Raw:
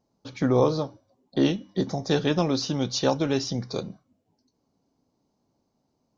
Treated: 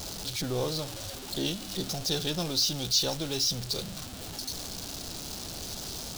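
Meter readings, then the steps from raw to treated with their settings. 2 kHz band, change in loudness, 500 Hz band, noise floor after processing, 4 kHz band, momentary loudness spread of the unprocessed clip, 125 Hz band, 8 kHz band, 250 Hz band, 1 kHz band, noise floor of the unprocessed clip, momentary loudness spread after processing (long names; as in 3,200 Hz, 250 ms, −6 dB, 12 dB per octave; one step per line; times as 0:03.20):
−4.5 dB, −5.0 dB, −9.5 dB, −41 dBFS, +5.5 dB, 12 LU, −6.5 dB, can't be measured, −10.0 dB, −8.5 dB, −75 dBFS, 11 LU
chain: converter with a step at zero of −26 dBFS
graphic EQ with 10 bands 125 Hz −7 dB, 250 Hz −12 dB, 500 Hz −7 dB, 1,000 Hz −10 dB, 2,000 Hz −10 dB, 4,000 Hz +4 dB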